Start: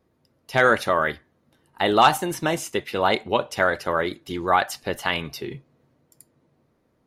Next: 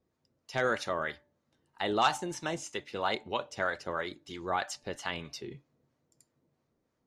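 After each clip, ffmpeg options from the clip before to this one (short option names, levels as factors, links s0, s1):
-filter_complex "[0:a]acrossover=split=680[s0][s1];[s0]aeval=exprs='val(0)*(1-0.5/2+0.5/2*cos(2*PI*3.1*n/s))':c=same[s2];[s1]aeval=exprs='val(0)*(1-0.5/2-0.5/2*cos(2*PI*3.1*n/s))':c=same[s3];[s2][s3]amix=inputs=2:normalize=0,lowpass=f=6900:t=q:w=1.9,bandreject=f=292.7:t=h:w=4,bandreject=f=585.4:t=h:w=4,bandreject=f=878.1:t=h:w=4,volume=0.355"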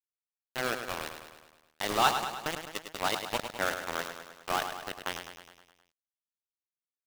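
-filter_complex "[0:a]dynaudnorm=f=250:g=11:m=1.5,aeval=exprs='val(0)*gte(abs(val(0)),0.0631)':c=same,asplit=2[s0][s1];[s1]aecho=0:1:104|208|312|416|520|624|728:0.398|0.235|0.139|0.0818|0.0482|0.0285|0.0168[s2];[s0][s2]amix=inputs=2:normalize=0,volume=0.841"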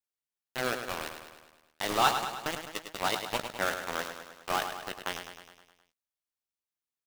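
-filter_complex "[0:a]asplit=2[s0][s1];[s1]adelay=16,volume=0.266[s2];[s0][s2]amix=inputs=2:normalize=0"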